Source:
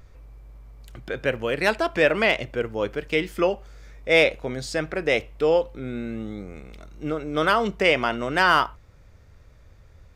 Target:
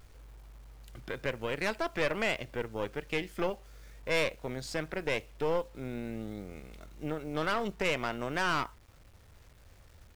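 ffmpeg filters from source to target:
-filter_complex "[0:a]asplit=2[a][b];[b]acompressor=threshold=-32dB:ratio=5,volume=1dB[c];[a][c]amix=inputs=2:normalize=0,acrusher=bits=7:mix=0:aa=0.000001,aeval=exprs='(tanh(5.62*val(0)+0.8)-tanh(0.8))/5.62':c=same,volume=-8dB"

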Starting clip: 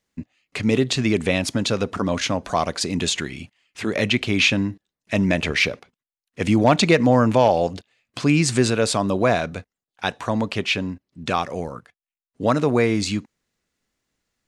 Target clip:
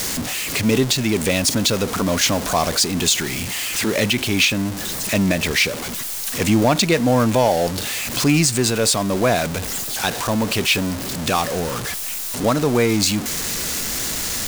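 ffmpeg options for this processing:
-af "aeval=exprs='val(0)+0.5*0.075*sgn(val(0))':c=same,bass=f=250:g=0,treble=f=4k:g=8,alimiter=limit=-5.5dB:level=0:latency=1:release=467"

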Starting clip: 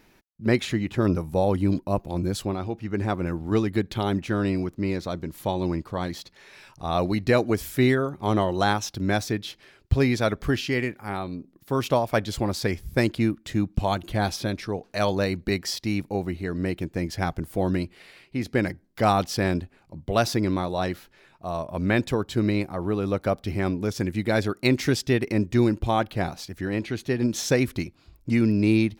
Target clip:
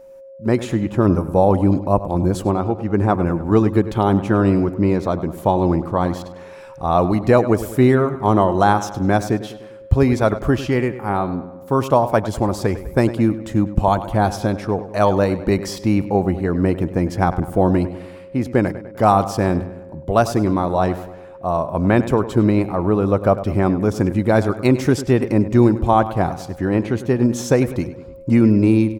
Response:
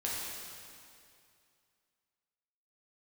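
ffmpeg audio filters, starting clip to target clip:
-filter_complex "[0:a]equalizer=f=1k:t=o:w=1:g=5,equalizer=f=2k:t=o:w=1:g=-7,equalizer=f=4k:t=o:w=1:g=-7,equalizer=f=8k:t=o:w=1:g=5,acrossover=split=3400[a][b];[a]dynaudnorm=f=140:g=7:m=11.5dB[c];[c][b]amix=inputs=2:normalize=0,aeval=exprs='val(0)+0.0112*sin(2*PI*540*n/s)':c=same,asplit=2[d][e];[e]adelay=100,lowpass=f=4.3k:p=1,volume=-13.5dB,asplit=2[f][g];[g]adelay=100,lowpass=f=4.3k:p=1,volume=0.53,asplit=2[h][i];[i]adelay=100,lowpass=f=4.3k:p=1,volume=0.53,asplit=2[j][k];[k]adelay=100,lowpass=f=4.3k:p=1,volume=0.53,asplit=2[l][m];[m]adelay=100,lowpass=f=4.3k:p=1,volume=0.53[n];[d][f][h][j][l][n]amix=inputs=6:normalize=0,volume=-1dB"

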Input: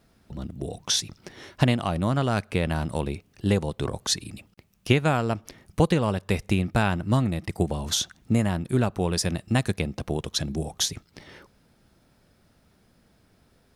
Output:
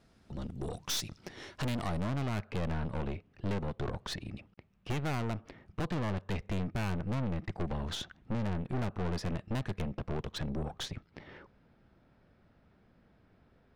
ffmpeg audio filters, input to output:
-af "asetnsamples=n=441:p=0,asendcmd='2.07 lowpass f 2400',lowpass=8.3k,aeval=exprs='(tanh(35.5*val(0)+0.6)-tanh(0.6))/35.5':c=same"

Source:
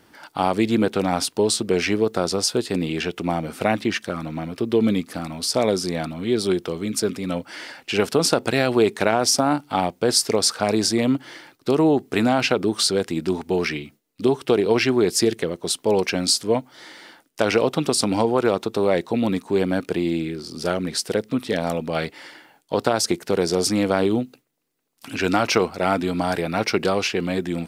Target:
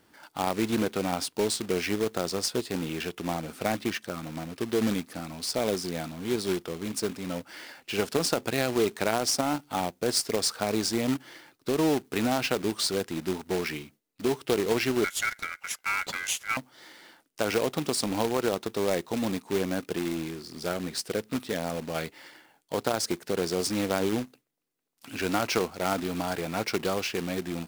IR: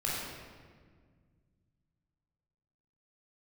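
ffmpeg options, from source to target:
-filter_complex "[0:a]acrusher=bits=2:mode=log:mix=0:aa=0.000001,asettb=1/sr,asplit=3[a][b][c];[a]atrim=end=15.044[d];[b]atrim=start=15.04:end=16.57,asetpts=PTS-STARTPTS,afade=t=in:d=0.004:c=qsin,afade=t=out:st=1.526:d=0.004:c=qsin,aeval=exprs='val(0)*sin(2*PI*1800*n/s)':c=same[e];[c]atrim=start=16.566[f];[d][e]acrossfade=d=0.004:c1=hsin:c2=qsin[g];[g][f]acrossfade=d=0.004:c1=qsin:c2=hsin,volume=-8dB"

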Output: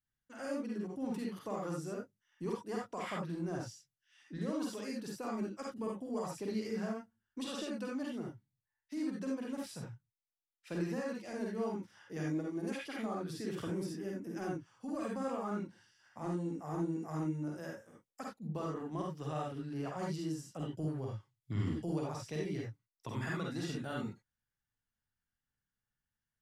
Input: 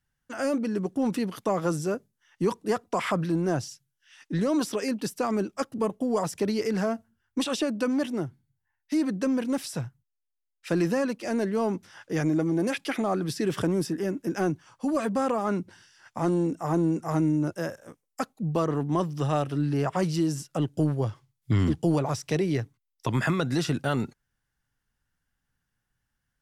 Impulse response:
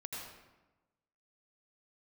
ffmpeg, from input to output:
-filter_complex "[1:a]atrim=start_sample=2205,afade=t=out:st=0.22:d=0.01,atrim=end_sample=10143,asetrate=79380,aresample=44100[a];[0:a][a]afir=irnorm=-1:irlink=0,volume=-5dB"

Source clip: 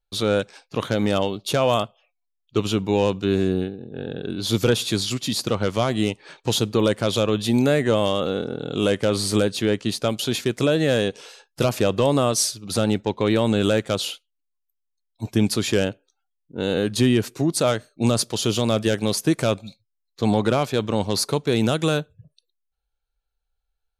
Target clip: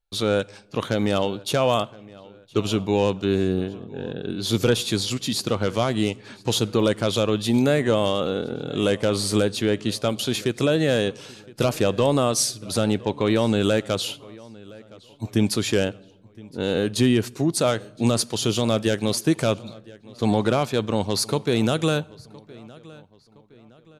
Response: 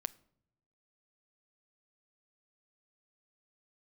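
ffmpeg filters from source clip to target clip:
-filter_complex "[0:a]asplit=2[a][b];[b]adelay=1016,lowpass=f=4.5k:p=1,volume=-22dB,asplit=2[c][d];[d]adelay=1016,lowpass=f=4.5k:p=1,volume=0.42,asplit=2[e][f];[f]adelay=1016,lowpass=f=4.5k:p=1,volume=0.42[g];[a][c][e][g]amix=inputs=4:normalize=0,asplit=2[h][i];[1:a]atrim=start_sample=2205,asetrate=24255,aresample=44100[j];[i][j]afir=irnorm=-1:irlink=0,volume=-4.5dB[k];[h][k]amix=inputs=2:normalize=0,volume=-5.5dB"

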